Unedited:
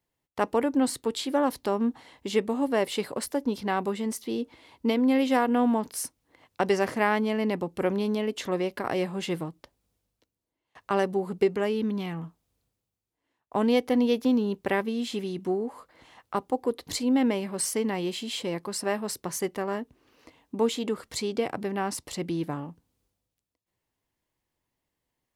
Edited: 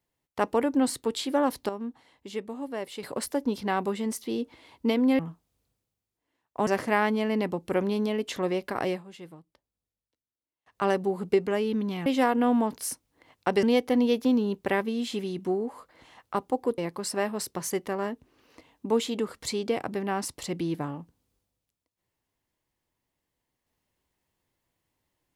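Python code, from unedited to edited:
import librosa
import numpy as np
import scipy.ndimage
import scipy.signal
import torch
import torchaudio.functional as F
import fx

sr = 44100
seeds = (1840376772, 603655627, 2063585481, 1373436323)

y = fx.edit(x, sr, fx.clip_gain(start_s=1.69, length_s=1.34, db=-9.0),
    fx.swap(start_s=5.19, length_s=1.57, other_s=12.15, other_length_s=1.48),
    fx.fade_down_up(start_s=8.96, length_s=1.96, db=-14.5, fade_s=0.17),
    fx.cut(start_s=16.78, length_s=1.69), tone=tone)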